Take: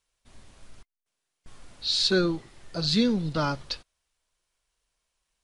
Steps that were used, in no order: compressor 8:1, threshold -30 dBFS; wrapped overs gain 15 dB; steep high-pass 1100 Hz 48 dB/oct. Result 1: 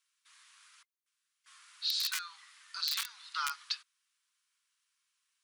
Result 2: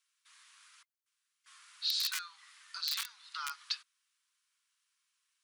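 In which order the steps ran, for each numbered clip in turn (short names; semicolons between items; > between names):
wrapped overs > steep high-pass > compressor; wrapped overs > compressor > steep high-pass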